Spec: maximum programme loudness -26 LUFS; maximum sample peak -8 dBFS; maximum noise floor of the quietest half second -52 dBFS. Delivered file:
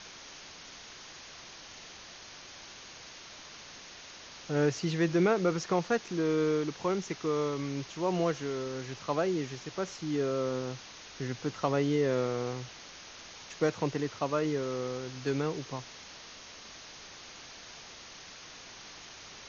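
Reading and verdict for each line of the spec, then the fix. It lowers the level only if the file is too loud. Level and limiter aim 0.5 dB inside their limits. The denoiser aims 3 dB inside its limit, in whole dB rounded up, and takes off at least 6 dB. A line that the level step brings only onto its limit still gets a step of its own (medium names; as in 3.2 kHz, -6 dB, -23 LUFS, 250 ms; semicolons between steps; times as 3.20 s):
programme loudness -31.5 LUFS: pass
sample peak -15.0 dBFS: pass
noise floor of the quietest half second -49 dBFS: fail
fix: noise reduction 6 dB, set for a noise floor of -49 dBFS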